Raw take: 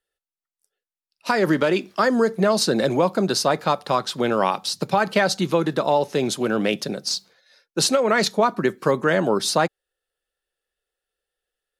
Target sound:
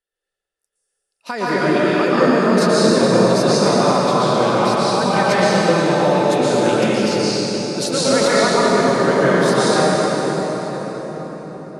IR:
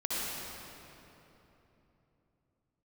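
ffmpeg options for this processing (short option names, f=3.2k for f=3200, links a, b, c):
-filter_complex "[0:a]asettb=1/sr,asplit=3[a][b][c];[a]atrim=end=7.884[d];[b]atrim=start=7.88:end=8.41,asetpts=PTS-STARTPTS,afade=t=in:d=0.004:c=qsin,afade=t=out:st=0.526:d=0.004:c=qsin,aeval=exprs='val(0)+0.5*0.0224*sgn(val(0))':c=same[e];[c]atrim=start=8.406[f];[d][e]acrossfade=d=0.004:c1=hsin:c2=qsin[g];[g][f]acrossfade=d=0.004:c1=qsin:c2=hsin[h];[1:a]atrim=start_sample=2205,asetrate=22050,aresample=44100[i];[h][i]afir=irnorm=-1:irlink=0,volume=-7dB"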